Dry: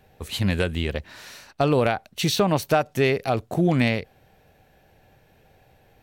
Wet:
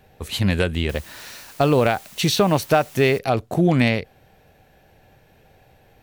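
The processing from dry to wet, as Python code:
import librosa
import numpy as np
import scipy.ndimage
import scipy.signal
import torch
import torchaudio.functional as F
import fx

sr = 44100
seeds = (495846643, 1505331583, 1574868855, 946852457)

y = fx.quant_dither(x, sr, seeds[0], bits=8, dither='triangular', at=(0.89, 3.19))
y = F.gain(torch.from_numpy(y), 3.0).numpy()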